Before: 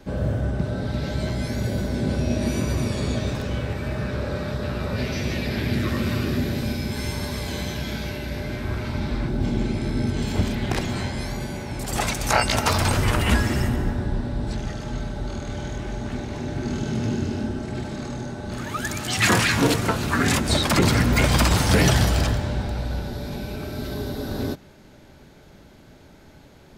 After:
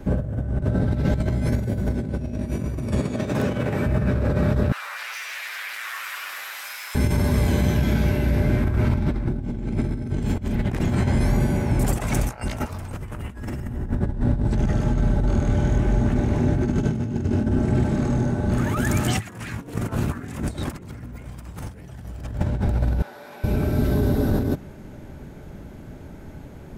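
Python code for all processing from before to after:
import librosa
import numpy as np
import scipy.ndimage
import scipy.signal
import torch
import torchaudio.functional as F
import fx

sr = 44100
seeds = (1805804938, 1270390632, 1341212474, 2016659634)

y = fx.chain(x, sr, fx.over_compress(threshold_db=-27.0, ratio=-0.5),
    fx.highpass(hz=120.0, slope=12),
    fx.low_shelf(hz=160.0, db=-7.5), at=(3.0, 3.86))
y = fx.chain(y, sr, fx.lower_of_two(delay_ms=8.9),
    fx.highpass(hz=1200.0, slope=24),
    fx.env_flatten(amount_pct=50), at=(4.72, 6.95))
y = fx.chain(y, sr, fx.highpass(hz=1000.0, slope=12),
    fx.high_shelf(hz=2800.0, db=-10.5), at=(23.02, 23.44))
y = fx.peak_eq(y, sr, hz=4300.0, db=-9.5, octaves=1.1)
y = fx.over_compress(y, sr, threshold_db=-28.0, ratio=-0.5)
y = fx.low_shelf(y, sr, hz=330.0, db=8.0)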